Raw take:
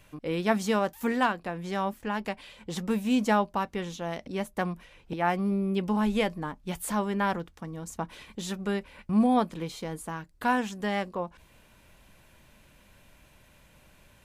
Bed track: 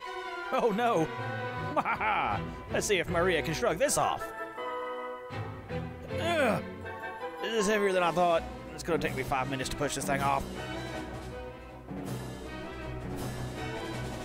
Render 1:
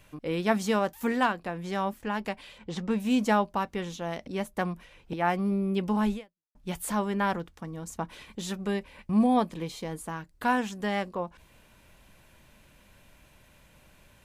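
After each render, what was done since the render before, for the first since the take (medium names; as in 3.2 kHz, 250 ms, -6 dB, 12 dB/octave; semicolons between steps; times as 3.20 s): 2.58–3.00 s: distance through air 80 m; 6.13–6.55 s: fade out exponential; 8.67–9.91 s: band-stop 1.4 kHz, Q 7.8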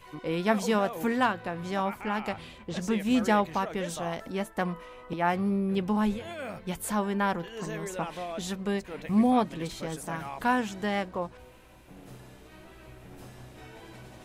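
add bed track -11 dB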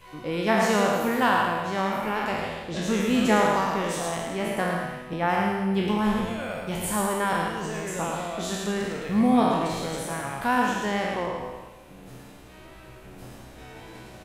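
spectral sustain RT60 1.40 s; delay 108 ms -5 dB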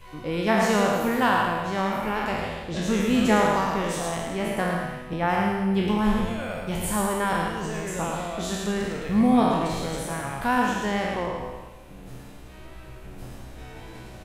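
bass shelf 81 Hz +11.5 dB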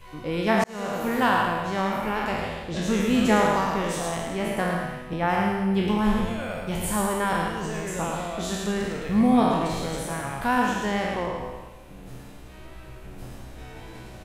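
0.64–1.20 s: fade in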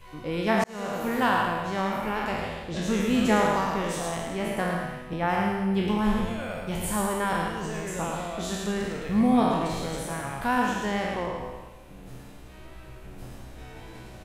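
trim -2 dB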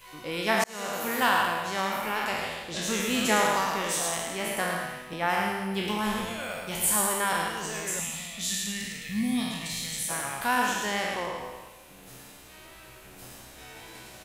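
7.99–10.10 s: time-frequency box 270–1700 Hz -16 dB; tilt EQ +3 dB/octave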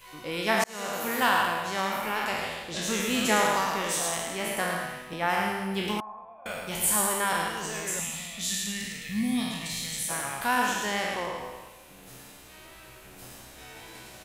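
6.00–6.46 s: cascade formant filter a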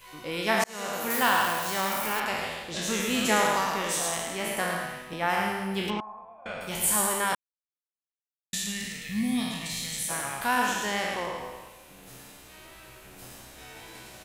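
1.10–2.20 s: zero-crossing glitches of -26 dBFS; 5.90–6.61 s: distance through air 140 m; 7.35–8.53 s: mute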